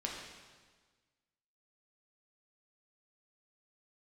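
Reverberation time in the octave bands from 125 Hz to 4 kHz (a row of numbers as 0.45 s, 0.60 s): 1.7 s, 1.6 s, 1.5 s, 1.5 s, 1.4 s, 1.4 s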